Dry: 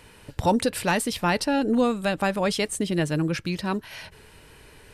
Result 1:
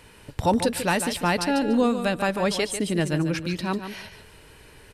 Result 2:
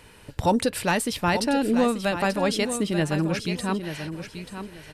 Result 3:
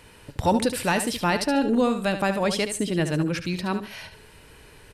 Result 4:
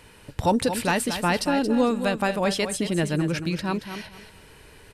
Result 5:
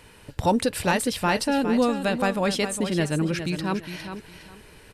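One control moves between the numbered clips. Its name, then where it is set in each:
feedback echo, time: 145, 885, 72, 226, 409 ms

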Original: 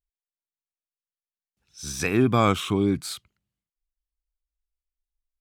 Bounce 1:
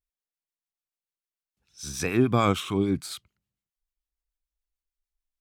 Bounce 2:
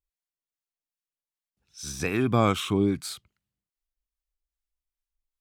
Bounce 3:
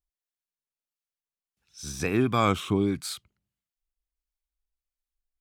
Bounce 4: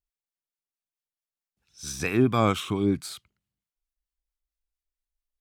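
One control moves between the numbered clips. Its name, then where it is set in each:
harmonic tremolo, rate: 6.8, 2.5, 1.5, 4.5 Hz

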